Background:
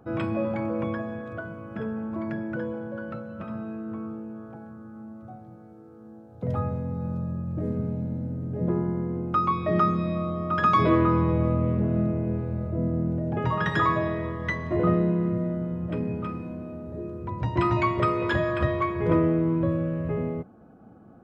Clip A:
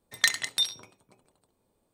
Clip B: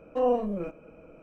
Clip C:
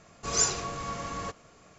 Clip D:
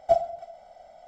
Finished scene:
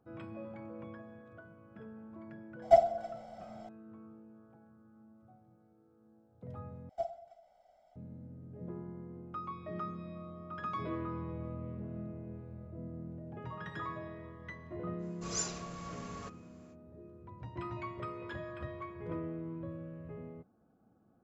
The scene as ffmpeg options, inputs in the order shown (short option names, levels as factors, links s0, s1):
-filter_complex "[4:a]asplit=2[s0][s1];[0:a]volume=0.126[s2];[s0]acontrast=63[s3];[s2]asplit=2[s4][s5];[s4]atrim=end=6.894[s6];[s1]atrim=end=1.07,asetpts=PTS-STARTPTS,volume=0.158[s7];[s5]atrim=start=7.956[s8];[s3]atrim=end=1.07,asetpts=PTS-STARTPTS,volume=0.473,afade=t=in:d=0.004:c=hsin,afade=t=out:st=1.066:d=0.004:c=hsin,adelay=2620[s9];[3:a]atrim=end=1.78,asetpts=PTS-STARTPTS,volume=0.282,afade=t=in:d=0.05,afade=t=out:st=1.73:d=0.05,adelay=14980[s10];[s6][s7]acrossfade=d=0.004:c1=hsin:c2=hsin[s11];[s11][s8]acrossfade=d=0.004:c1=hsin:c2=hsin[s12];[s12][s9][s10]amix=inputs=3:normalize=0"